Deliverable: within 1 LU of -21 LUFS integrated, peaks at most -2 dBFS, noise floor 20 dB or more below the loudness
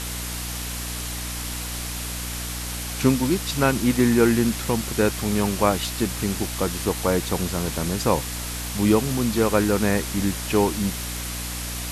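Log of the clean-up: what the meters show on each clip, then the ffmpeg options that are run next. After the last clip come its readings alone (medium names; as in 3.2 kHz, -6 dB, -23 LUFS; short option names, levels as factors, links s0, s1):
hum 60 Hz; highest harmonic 300 Hz; hum level -31 dBFS; noise floor -31 dBFS; noise floor target -44 dBFS; loudness -23.5 LUFS; peak level -4.5 dBFS; loudness target -21.0 LUFS
-> -af "bandreject=f=60:t=h:w=6,bandreject=f=120:t=h:w=6,bandreject=f=180:t=h:w=6,bandreject=f=240:t=h:w=6,bandreject=f=300:t=h:w=6"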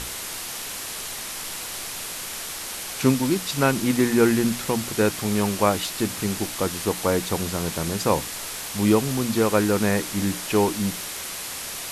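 hum not found; noise floor -33 dBFS; noise floor target -44 dBFS
-> -af "afftdn=nr=11:nf=-33"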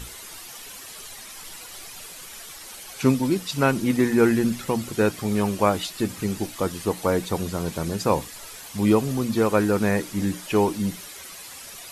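noise floor -41 dBFS; noise floor target -44 dBFS
-> -af "afftdn=nr=6:nf=-41"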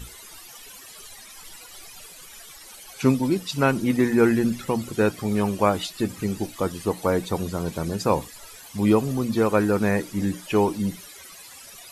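noise floor -45 dBFS; loudness -23.5 LUFS; peak level -5.5 dBFS; loudness target -21.0 LUFS
-> -af "volume=1.33"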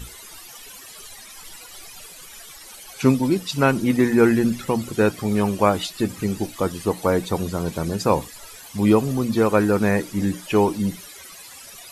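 loudness -21.0 LUFS; peak level -3.0 dBFS; noise floor -42 dBFS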